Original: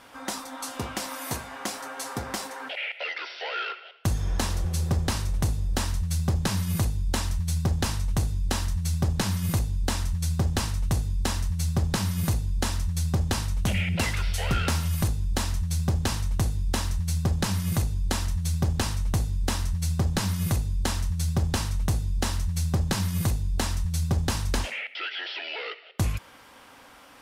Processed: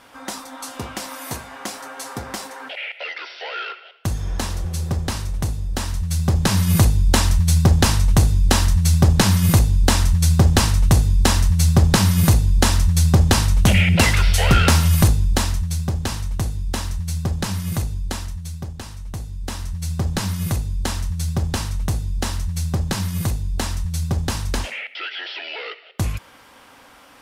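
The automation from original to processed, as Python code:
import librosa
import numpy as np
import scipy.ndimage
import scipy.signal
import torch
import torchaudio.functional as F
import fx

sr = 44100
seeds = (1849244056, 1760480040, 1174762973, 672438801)

y = fx.gain(x, sr, db=fx.line((5.8, 2.0), (6.78, 11.0), (15.1, 11.0), (15.88, 2.0), (17.94, 2.0), (18.82, -8.0), (20.09, 3.0)))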